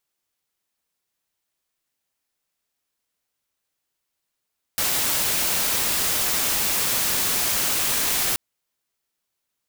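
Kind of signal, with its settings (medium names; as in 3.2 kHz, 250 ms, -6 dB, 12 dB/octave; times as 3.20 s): noise white, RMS -22.5 dBFS 3.58 s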